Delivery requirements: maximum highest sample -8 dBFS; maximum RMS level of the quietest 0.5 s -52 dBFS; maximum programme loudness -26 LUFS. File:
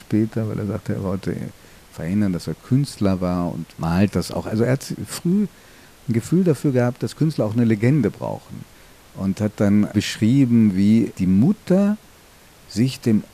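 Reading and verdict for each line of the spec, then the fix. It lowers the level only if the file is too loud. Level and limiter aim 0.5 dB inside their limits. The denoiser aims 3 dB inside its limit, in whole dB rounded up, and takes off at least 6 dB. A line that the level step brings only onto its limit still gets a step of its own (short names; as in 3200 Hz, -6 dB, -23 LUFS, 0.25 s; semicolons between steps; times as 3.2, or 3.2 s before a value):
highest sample -5.5 dBFS: fail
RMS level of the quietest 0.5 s -48 dBFS: fail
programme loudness -20.5 LUFS: fail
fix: gain -6 dB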